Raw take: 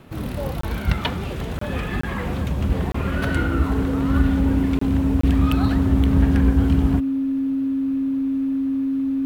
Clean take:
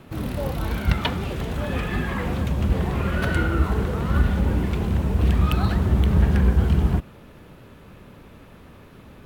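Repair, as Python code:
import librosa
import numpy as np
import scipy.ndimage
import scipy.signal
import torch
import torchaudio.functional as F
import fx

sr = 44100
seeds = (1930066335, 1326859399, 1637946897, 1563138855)

y = fx.notch(x, sr, hz=270.0, q=30.0)
y = fx.fix_interpolate(y, sr, at_s=(0.61, 1.59, 2.01, 2.92, 4.79, 5.21), length_ms=24.0)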